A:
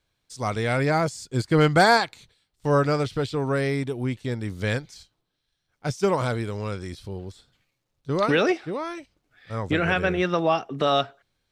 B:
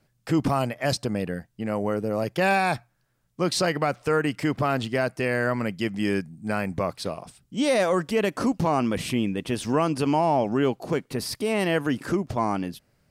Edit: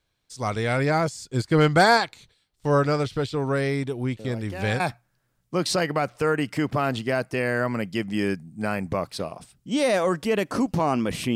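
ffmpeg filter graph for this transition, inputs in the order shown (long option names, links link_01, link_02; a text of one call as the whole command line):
ffmpeg -i cue0.wav -i cue1.wav -filter_complex "[1:a]asplit=2[link_01][link_02];[0:a]apad=whole_dur=11.35,atrim=end=11.35,atrim=end=4.802[link_03];[link_02]atrim=start=2.658:end=9.21[link_04];[link_01]atrim=start=2.05:end=2.66,asetpts=PTS-STARTPTS,volume=-13.5dB,afade=type=in:duration=0.004:curve=hsin,afade=type=out:start_time=0.606:duration=0.004:curve=hsin,adelay=4190[link_05];[link_03][link_04]acrossfade=duration=0.004:curve1=hsin:curve2=hsin[link_06];[link_06][link_05]amix=inputs=2:normalize=0" out.wav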